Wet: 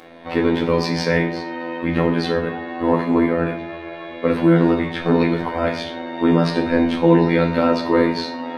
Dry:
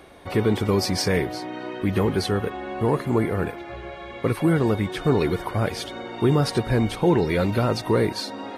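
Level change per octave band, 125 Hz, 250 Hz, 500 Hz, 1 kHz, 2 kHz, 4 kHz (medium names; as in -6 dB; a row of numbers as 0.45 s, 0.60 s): 0.0 dB, +6.0 dB, +4.0 dB, +5.0 dB, +5.5 dB, +1.0 dB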